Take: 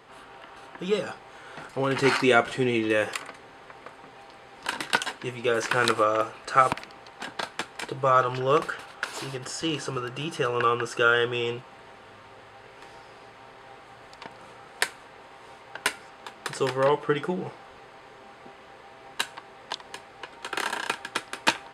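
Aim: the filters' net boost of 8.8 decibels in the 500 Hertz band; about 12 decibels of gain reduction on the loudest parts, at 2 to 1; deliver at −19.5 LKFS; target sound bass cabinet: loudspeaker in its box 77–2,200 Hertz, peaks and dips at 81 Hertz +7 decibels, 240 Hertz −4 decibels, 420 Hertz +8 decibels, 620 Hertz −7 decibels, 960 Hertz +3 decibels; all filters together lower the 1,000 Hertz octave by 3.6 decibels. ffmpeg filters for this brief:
ffmpeg -i in.wav -af "equalizer=frequency=500:width_type=o:gain=8,equalizer=frequency=1000:width_type=o:gain=-7.5,acompressor=threshold=-35dB:ratio=2,highpass=frequency=77:width=0.5412,highpass=frequency=77:width=1.3066,equalizer=frequency=81:width_type=q:width=4:gain=7,equalizer=frequency=240:width_type=q:width=4:gain=-4,equalizer=frequency=420:width_type=q:width=4:gain=8,equalizer=frequency=620:width_type=q:width=4:gain=-7,equalizer=frequency=960:width_type=q:width=4:gain=3,lowpass=frequency=2200:width=0.5412,lowpass=frequency=2200:width=1.3066,volume=12.5dB" out.wav

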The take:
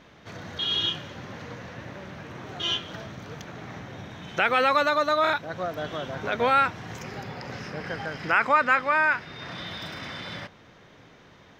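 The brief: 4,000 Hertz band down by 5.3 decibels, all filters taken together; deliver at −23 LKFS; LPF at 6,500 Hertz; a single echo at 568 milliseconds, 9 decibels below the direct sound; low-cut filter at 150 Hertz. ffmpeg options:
ffmpeg -i in.wav -af "highpass=150,lowpass=6500,equalizer=frequency=4000:width_type=o:gain=-7,aecho=1:1:568:0.355,volume=3.5dB" out.wav

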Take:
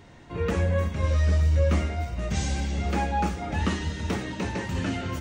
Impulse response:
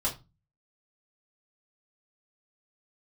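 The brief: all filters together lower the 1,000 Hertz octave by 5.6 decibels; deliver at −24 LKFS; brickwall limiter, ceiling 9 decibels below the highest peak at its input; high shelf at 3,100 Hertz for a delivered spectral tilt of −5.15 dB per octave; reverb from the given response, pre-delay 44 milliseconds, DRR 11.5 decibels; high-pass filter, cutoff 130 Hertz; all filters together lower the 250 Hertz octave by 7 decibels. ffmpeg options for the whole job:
-filter_complex "[0:a]highpass=130,equalizer=frequency=250:width_type=o:gain=-9,equalizer=frequency=1000:width_type=o:gain=-6.5,highshelf=frequency=3100:gain=-3,alimiter=level_in=3.5dB:limit=-24dB:level=0:latency=1,volume=-3.5dB,asplit=2[link_01][link_02];[1:a]atrim=start_sample=2205,adelay=44[link_03];[link_02][link_03]afir=irnorm=-1:irlink=0,volume=-18dB[link_04];[link_01][link_04]amix=inputs=2:normalize=0,volume=12dB"

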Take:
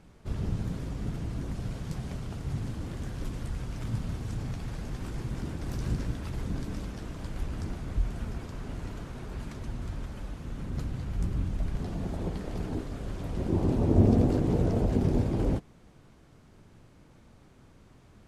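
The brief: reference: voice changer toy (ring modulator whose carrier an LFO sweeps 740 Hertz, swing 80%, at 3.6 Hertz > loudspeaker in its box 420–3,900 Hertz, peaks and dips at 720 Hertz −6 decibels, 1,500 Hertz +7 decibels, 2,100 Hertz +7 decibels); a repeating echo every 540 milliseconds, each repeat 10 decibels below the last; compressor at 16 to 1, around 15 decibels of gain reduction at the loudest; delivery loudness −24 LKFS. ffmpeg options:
ffmpeg -i in.wav -af "acompressor=threshold=-31dB:ratio=16,aecho=1:1:540|1080|1620|2160:0.316|0.101|0.0324|0.0104,aeval=exprs='val(0)*sin(2*PI*740*n/s+740*0.8/3.6*sin(2*PI*3.6*n/s))':channel_layout=same,highpass=420,equalizer=frequency=720:width_type=q:width=4:gain=-6,equalizer=frequency=1500:width_type=q:width=4:gain=7,equalizer=frequency=2100:width_type=q:width=4:gain=7,lowpass=frequency=3900:width=0.5412,lowpass=frequency=3900:width=1.3066,volume=14dB" out.wav

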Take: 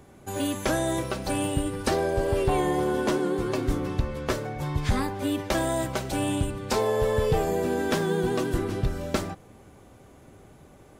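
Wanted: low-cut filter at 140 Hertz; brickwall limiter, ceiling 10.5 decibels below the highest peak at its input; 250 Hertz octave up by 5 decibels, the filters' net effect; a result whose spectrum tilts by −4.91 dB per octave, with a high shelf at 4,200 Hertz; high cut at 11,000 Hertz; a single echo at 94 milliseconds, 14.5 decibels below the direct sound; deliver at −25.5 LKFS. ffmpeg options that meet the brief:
ffmpeg -i in.wav -af "highpass=140,lowpass=11000,equalizer=frequency=250:width_type=o:gain=7,highshelf=frequency=4200:gain=7,alimiter=limit=-18.5dB:level=0:latency=1,aecho=1:1:94:0.188,volume=2.5dB" out.wav

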